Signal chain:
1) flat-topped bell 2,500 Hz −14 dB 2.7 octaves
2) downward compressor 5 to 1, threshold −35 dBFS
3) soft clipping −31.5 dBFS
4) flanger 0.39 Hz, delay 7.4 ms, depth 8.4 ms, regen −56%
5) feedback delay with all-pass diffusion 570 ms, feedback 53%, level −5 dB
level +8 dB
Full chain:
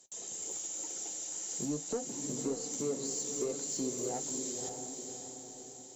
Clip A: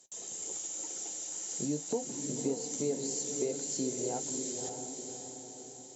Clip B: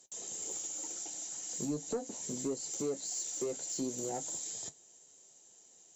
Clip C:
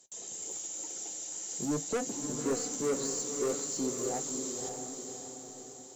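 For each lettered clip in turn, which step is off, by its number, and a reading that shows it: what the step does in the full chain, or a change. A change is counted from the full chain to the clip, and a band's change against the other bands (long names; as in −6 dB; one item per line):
3, distortion level −17 dB
5, echo-to-direct ratio −3.5 dB to none audible
2, average gain reduction 2.5 dB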